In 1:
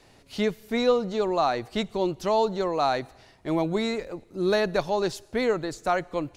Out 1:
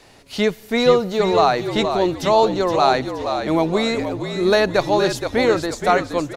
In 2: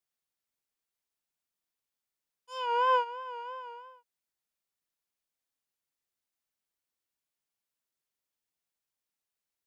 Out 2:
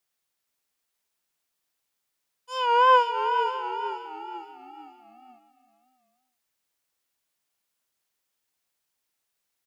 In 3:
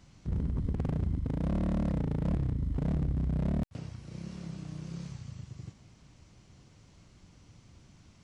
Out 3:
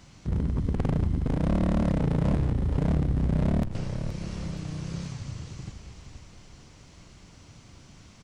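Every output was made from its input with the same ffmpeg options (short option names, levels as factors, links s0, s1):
-filter_complex "[0:a]lowshelf=f=330:g=-4.5,asplit=6[s0][s1][s2][s3][s4][s5];[s1]adelay=471,afreqshift=-52,volume=0.422[s6];[s2]adelay=942,afreqshift=-104,volume=0.186[s7];[s3]adelay=1413,afreqshift=-156,volume=0.0813[s8];[s4]adelay=1884,afreqshift=-208,volume=0.0359[s9];[s5]adelay=2355,afreqshift=-260,volume=0.0158[s10];[s0][s6][s7][s8][s9][s10]amix=inputs=6:normalize=0,volume=2.66"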